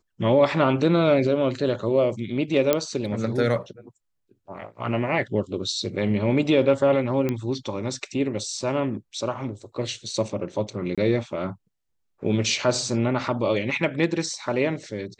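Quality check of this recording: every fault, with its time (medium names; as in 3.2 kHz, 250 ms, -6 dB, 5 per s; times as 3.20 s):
2.73 s: pop -5 dBFS
7.29 s: pop -13 dBFS
10.95–10.98 s: dropout 26 ms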